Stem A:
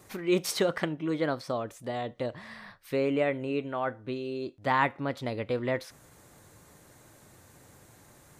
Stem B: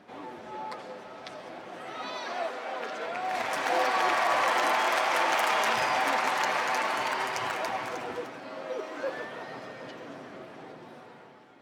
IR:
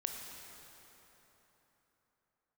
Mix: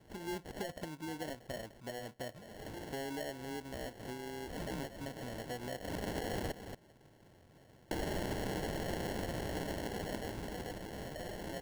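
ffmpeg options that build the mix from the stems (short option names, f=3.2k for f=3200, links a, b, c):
-filter_complex "[0:a]adynamicequalizer=threshold=0.00282:dfrequency=4900:dqfactor=0.89:tfrequency=4900:tqfactor=0.89:attack=5:release=100:ratio=0.375:range=3:mode=cutabove:tftype=bell,volume=-6dB,asplit=2[a][b];[1:a]highpass=f=700:p=1,tiltshelf=f=1.3k:g=-8,adelay=2500,volume=3dB,asplit=3[c][d][e];[c]atrim=end=6.52,asetpts=PTS-STARTPTS,afade=t=out:st=6.516:d=0.004:c=hsin[f];[d]atrim=start=6.52:end=7.91,asetpts=PTS-STARTPTS,volume=0[g];[e]atrim=start=7.91,asetpts=PTS-STARTPTS,afade=t=in:d=0.004:c=hsin[h];[f][g][h]concat=n=3:v=0:a=1,asplit=2[i][j];[j]volume=-16dB[k];[b]apad=whole_len=622578[l];[i][l]sidechaincompress=threshold=-49dB:ratio=12:attack=28:release=160[m];[k]aecho=0:1:228:1[n];[a][m][n]amix=inputs=3:normalize=0,acrusher=samples=36:mix=1:aa=0.000001,acompressor=threshold=-42dB:ratio=2.5"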